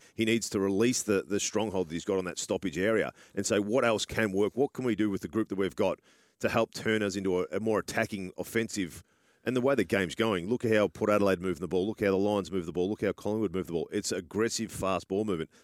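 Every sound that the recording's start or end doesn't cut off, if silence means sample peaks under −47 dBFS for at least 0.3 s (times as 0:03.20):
0:06.41–0:09.01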